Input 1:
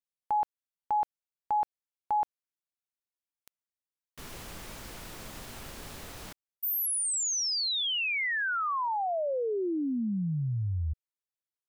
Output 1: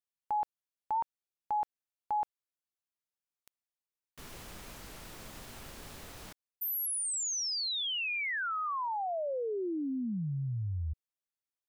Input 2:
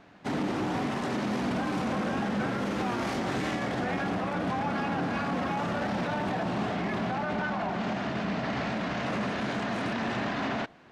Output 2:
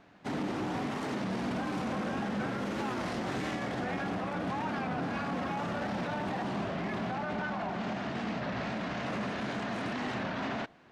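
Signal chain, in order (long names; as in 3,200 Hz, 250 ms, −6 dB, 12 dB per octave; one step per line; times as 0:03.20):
wow of a warped record 33 1/3 rpm, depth 160 cents
level −4 dB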